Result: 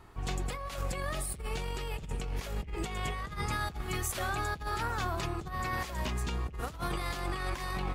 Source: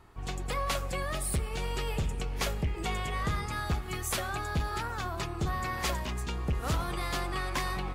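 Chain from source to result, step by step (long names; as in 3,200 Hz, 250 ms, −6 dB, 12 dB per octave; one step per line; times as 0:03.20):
compressor whose output falls as the input rises −34 dBFS, ratio −0.5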